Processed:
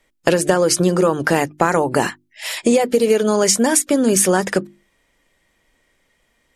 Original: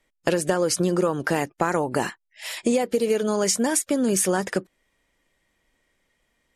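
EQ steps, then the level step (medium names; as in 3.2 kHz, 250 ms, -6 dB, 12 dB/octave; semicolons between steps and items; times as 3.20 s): hum notches 50/100/150/200/250/300/350 Hz; +7.0 dB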